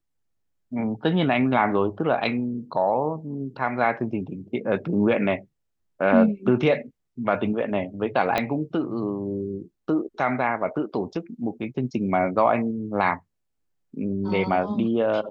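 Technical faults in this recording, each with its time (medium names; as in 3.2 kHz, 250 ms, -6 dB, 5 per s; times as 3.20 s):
8.38 s: pop -9 dBFS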